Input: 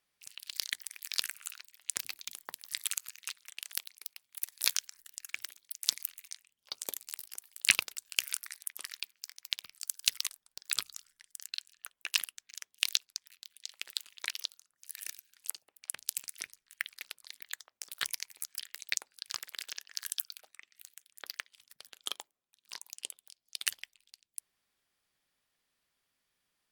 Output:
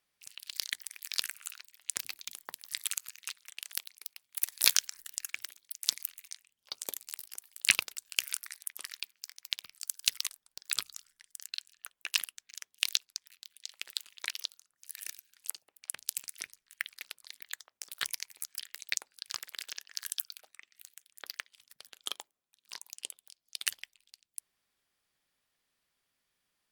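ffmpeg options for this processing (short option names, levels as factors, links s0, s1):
-filter_complex "[0:a]asettb=1/sr,asplit=3[s0][s1][s2];[s0]atrim=end=4.364[s3];[s1]atrim=start=4.36:end=5.29,asetpts=PTS-STARTPTS,afade=t=in:d=0.004:c=qsin,afade=t=out:st=0.926:d=0.004:c=qsin,acontrast=88[s4];[s2]atrim=start=5.286[s5];[s3][s4]acrossfade=d=0.004:c1=hsin:c2=qsin[s6];[s6][s5]acrossfade=d=0.004:c1=qsin:c2=hsin"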